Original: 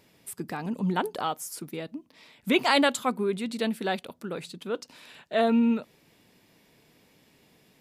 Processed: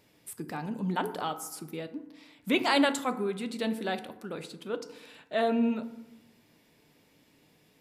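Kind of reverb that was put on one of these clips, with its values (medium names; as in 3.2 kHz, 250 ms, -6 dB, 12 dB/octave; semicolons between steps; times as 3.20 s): FDN reverb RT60 0.93 s, low-frequency decay 1.25×, high-frequency decay 0.45×, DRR 9 dB; trim -3.5 dB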